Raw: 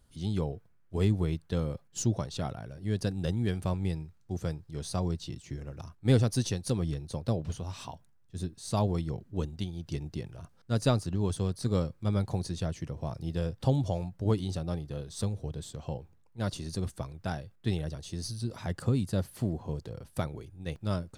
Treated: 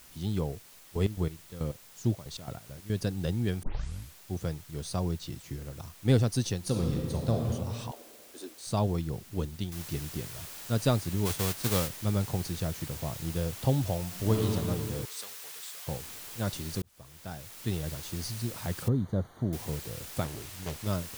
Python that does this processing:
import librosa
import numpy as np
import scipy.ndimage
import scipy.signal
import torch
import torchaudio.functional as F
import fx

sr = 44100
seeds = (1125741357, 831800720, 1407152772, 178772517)

y = fx.chopper(x, sr, hz=4.6, depth_pct=80, duty_pct=50, at=(0.52, 2.9))
y = fx.reverb_throw(y, sr, start_s=6.58, length_s=0.77, rt60_s=2.3, drr_db=0.5)
y = fx.steep_highpass(y, sr, hz=270.0, slope=48, at=(7.91, 8.67))
y = fx.noise_floor_step(y, sr, seeds[0], at_s=9.72, before_db=-54, after_db=-44, tilt_db=0.0)
y = fx.envelope_flatten(y, sr, power=0.6, at=(11.25, 11.87), fade=0.02)
y = fx.reverb_throw(y, sr, start_s=14.06, length_s=0.4, rt60_s=2.8, drr_db=-0.5)
y = fx.highpass(y, sr, hz=1100.0, slope=12, at=(15.05, 15.87))
y = fx.moving_average(y, sr, points=17, at=(18.88, 19.53))
y = fx.doppler_dist(y, sr, depth_ms=0.86, at=(20.24, 20.87))
y = fx.edit(y, sr, fx.tape_start(start_s=3.63, length_s=0.55),
    fx.fade_in_span(start_s=16.82, length_s=1.1), tone=tone)